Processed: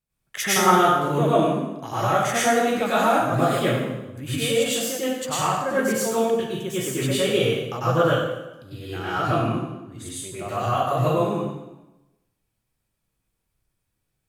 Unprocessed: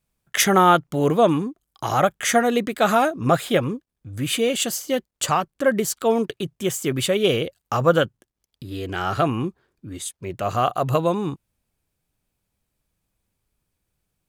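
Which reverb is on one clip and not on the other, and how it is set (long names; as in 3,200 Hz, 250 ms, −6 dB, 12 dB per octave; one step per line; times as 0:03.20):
dense smooth reverb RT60 1 s, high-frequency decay 0.85×, pre-delay 85 ms, DRR −10 dB
level −10.5 dB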